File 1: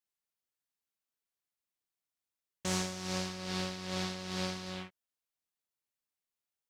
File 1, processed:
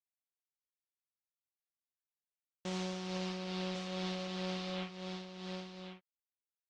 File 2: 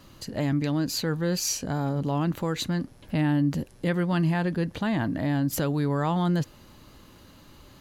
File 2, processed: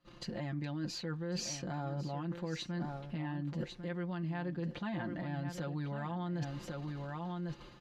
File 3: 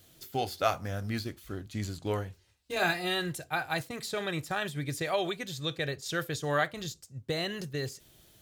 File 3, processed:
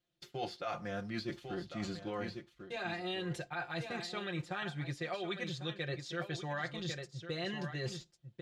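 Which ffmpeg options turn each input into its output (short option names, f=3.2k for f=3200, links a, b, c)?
-af "agate=range=-27dB:threshold=-49dB:ratio=16:detection=peak,alimiter=limit=-23dB:level=0:latency=1:release=239,lowpass=4.2k,lowshelf=f=120:g=-4.5,aecho=1:1:5.7:0.86,aecho=1:1:1099:0.266,areverse,acompressor=threshold=-38dB:ratio=6,areverse,volume=2dB"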